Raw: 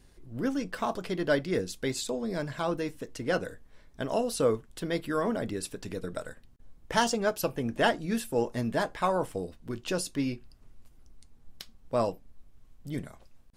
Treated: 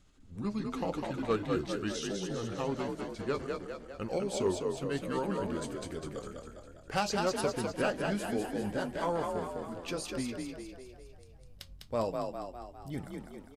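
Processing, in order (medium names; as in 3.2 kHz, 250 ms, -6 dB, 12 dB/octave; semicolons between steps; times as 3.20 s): pitch bend over the whole clip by -5 st ending unshifted; frequency-shifting echo 202 ms, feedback 54%, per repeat +42 Hz, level -4 dB; one-sided clip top -18 dBFS; trim -4 dB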